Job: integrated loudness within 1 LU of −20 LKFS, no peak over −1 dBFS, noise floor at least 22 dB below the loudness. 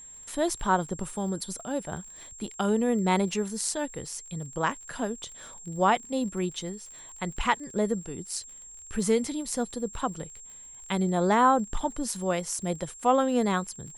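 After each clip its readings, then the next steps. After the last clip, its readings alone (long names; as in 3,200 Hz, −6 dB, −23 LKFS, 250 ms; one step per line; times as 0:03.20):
crackle rate 40 per second; interfering tone 7,500 Hz; level of the tone −44 dBFS; integrated loudness −28.5 LKFS; sample peak −10.0 dBFS; target loudness −20.0 LKFS
→ click removal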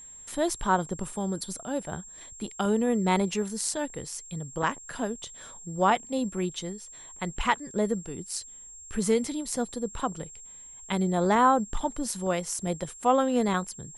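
crackle rate 0.072 per second; interfering tone 7,500 Hz; level of the tone −44 dBFS
→ notch filter 7,500 Hz, Q 30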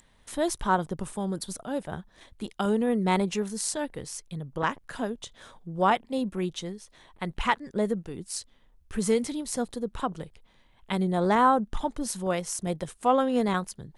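interfering tone none found; integrated loudness −28.5 LKFS; sample peak −10.0 dBFS; target loudness −20.0 LKFS
→ level +8.5 dB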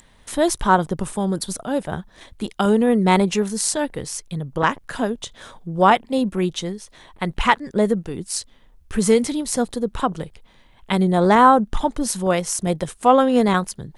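integrated loudness −20.0 LKFS; sample peak −1.5 dBFS; background noise floor −53 dBFS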